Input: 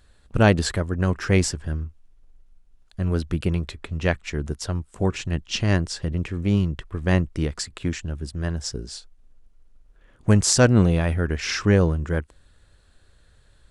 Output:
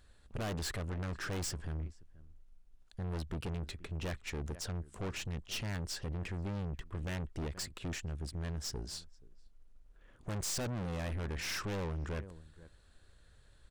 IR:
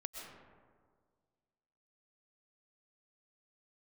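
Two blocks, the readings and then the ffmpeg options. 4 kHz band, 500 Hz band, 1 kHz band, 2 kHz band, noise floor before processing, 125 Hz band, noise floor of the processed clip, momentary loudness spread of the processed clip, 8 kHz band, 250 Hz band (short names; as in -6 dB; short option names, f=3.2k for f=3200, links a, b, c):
-12.0 dB, -18.5 dB, -14.5 dB, -15.0 dB, -57 dBFS, -16.5 dB, -62 dBFS, 6 LU, -14.0 dB, -19.0 dB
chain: -filter_complex "[0:a]asplit=2[a][b];[b]adelay=478.1,volume=-27dB,highshelf=f=4k:g=-10.8[c];[a][c]amix=inputs=2:normalize=0,aeval=exprs='(tanh(35.5*val(0)+0.4)-tanh(0.4))/35.5':c=same,volume=-4.5dB"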